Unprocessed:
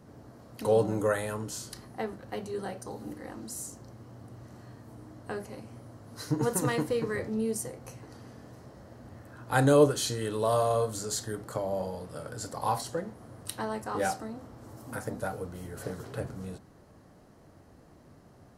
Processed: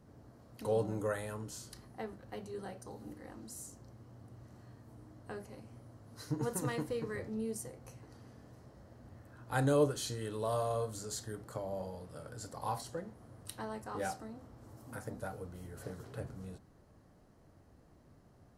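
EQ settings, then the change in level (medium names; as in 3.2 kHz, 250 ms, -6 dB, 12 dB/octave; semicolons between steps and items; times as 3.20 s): bass shelf 80 Hz +8.5 dB; -8.5 dB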